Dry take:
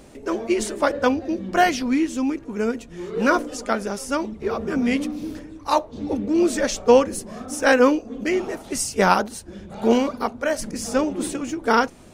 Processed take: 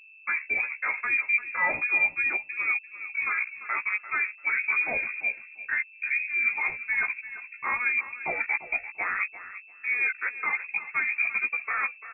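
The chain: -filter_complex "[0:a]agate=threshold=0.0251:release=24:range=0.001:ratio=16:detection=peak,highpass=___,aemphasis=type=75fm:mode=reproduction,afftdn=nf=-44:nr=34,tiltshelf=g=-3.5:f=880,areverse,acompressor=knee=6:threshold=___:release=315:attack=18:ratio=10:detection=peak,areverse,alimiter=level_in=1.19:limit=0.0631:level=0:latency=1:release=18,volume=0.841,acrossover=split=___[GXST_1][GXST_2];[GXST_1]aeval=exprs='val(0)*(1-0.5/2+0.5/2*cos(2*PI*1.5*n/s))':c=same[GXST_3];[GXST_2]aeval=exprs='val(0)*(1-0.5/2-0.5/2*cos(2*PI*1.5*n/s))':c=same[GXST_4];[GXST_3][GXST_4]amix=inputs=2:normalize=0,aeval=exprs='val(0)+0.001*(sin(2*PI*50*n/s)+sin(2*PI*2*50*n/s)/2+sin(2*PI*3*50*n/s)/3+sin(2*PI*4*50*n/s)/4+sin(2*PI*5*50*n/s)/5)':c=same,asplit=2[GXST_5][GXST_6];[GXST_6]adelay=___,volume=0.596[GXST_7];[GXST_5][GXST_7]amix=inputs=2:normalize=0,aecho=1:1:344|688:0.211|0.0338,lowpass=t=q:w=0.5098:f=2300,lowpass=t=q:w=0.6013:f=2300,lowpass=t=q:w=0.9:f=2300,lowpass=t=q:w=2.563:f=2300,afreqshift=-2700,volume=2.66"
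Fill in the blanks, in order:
240, 0.0282, 610, 15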